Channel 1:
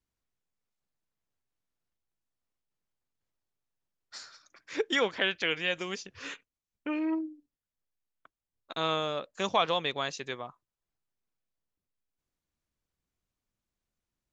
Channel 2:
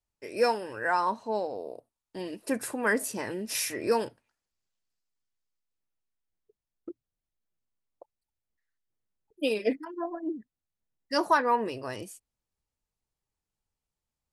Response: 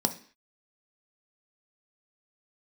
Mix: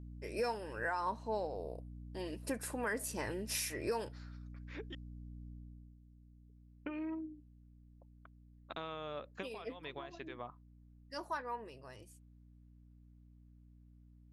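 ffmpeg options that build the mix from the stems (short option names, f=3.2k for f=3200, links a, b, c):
-filter_complex "[0:a]lowpass=2.9k,acompressor=threshold=-35dB:ratio=12,volume=-2.5dB,asplit=3[a][b][c];[a]atrim=end=4.95,asetpts=PTS-STARTPTS,afade=t=out:st=4.946:d=0.004:c=hsin[d];[b]atrim=start=4.95:end=6.56,asetpts=PTS-STARTPTS,volume=0[e];[c]atrim=start=6.56,asetpts=PTS-STARTPTS,afade=t=in:d=0.004:c=hsin[f];[d][e][f]concat=n=3:v=0:a=1[g];[1:a]asubboost=boost=7:cutoff=76,aeval=exprs='val(0)+0.00708*(sin(2*PI*60*n/s)+sin(2*PI*2*60*n/s)/2+sin(2*PI*3*60*n/s)/3+sin(2*PI*4*60*n/s)/4+sin(2*PI*5*60*n/s)/5)':c=same,volume=-4.5dB,afade=t=out:st=5.5:d=0.48:silence=0.266073,asplit=2[h][i];[i]apad=whole_len=631718[j];[g][j]sidechaincompress=threshold=-52dB:ratio=8:attack=6:release=170[k];[k][h]amix=inputs=2:normalize=0,alimiter=level_in=2.5dB:limit=-24dB:level=0:latency=1:release=296,volume=-2.5dB"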